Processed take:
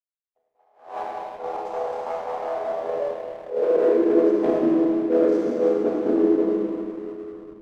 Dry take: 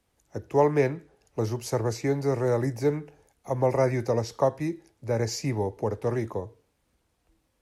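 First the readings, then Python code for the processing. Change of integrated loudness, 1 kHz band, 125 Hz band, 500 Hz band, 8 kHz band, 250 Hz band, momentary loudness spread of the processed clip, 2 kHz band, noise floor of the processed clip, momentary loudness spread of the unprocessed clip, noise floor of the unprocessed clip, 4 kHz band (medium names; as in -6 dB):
+4.5 dB, +2.0 dB, -17.0 dB, +5.0 dB, under -15 dB, +9.0 dB, 14 LU, -2.5 dB, -79 dBFS, 13 LU, -73 dBFS, no reading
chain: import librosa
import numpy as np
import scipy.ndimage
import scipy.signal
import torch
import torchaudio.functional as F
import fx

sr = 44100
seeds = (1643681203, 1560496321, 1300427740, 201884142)

p1 = fx.chord_vocoder(x, sr, chord='major triad', root=52)
p2 = np.clip(p1, -10.0 ** (-26.5 / 20.0), 10.0 ** (-26.5 / 20.0))
p3 = fx.peak_eq(p2, sr, hz=480.0, db=6.5, octaves=1.2)
p4 = fx.rider(p3, sr, range_db=10, speed_s=0.5)
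p5 = fx.filter_sweep_highpass(p4, sr, from_hz=780.0, to_hz=300.0, start_s=2.41, end_s=4.24, q=6.9)
p6 = fx.level_steps(p5, sr, step_db=10)
p7 = fx.high_shelf(p6, sr, hz=4100.0, db=-8.5)
p8 = fx.rev_schroeder(p7, sr, rt60_s=2.8, comb_ms=26, drr_db=-5.0)
p9 = fx.backlash(p8, sr, play_db=-37.5)
p10 = p9 + fx.echo_single(p9, sr, ms=946, db=-22.0, dry=0)
y = fx.attack_slew(p10, sr, db_per_s=140.0)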